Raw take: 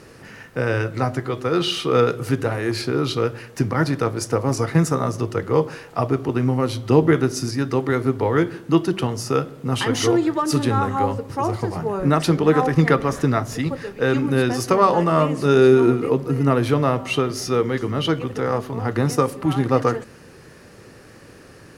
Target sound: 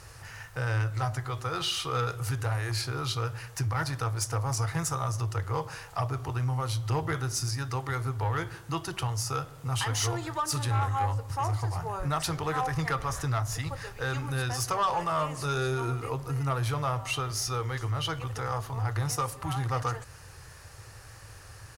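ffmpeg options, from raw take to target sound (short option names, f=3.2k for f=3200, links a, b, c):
-filter_complex "[0:a]firequalizer=gain_entry='entry(100,0);entry(200,-26);entry(810,-6);entry(2200,-9);entry(6700,-2)':delay=0.05:min_phase=1,asplit=2[a][b];[b]acompressor=threshold=-37dB:ratio=6,volume=-3dB[c];[a][c]amix=inputs=2:normalize=0,asoftclip=type=tanh:threshold=-20.5dB"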